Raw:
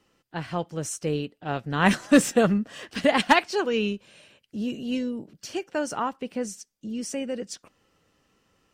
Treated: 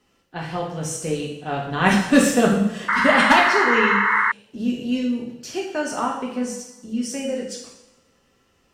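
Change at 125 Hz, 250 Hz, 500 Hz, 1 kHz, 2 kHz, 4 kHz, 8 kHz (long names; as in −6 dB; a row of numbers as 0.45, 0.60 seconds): +3.5, +4.0, +3.0, +7.5, +10.0, +4.0, +4.0 decibels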